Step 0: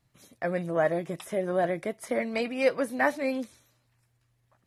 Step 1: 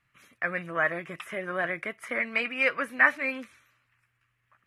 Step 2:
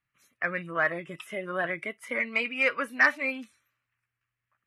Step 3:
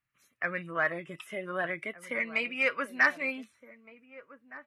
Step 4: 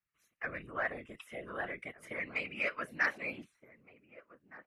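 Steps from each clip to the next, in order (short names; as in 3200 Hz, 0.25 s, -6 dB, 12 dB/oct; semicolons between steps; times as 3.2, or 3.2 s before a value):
band shelf 1800 Hz +15.5 dB; gain -7 dB
spectral noise reduction 12 dB; sine folder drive 3 dB, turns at -5 dBFS; gain -6.5 dB
outdoor echo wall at 260 m, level -16 dB; gain -2.5 dB
whisperiser; gain -7 dB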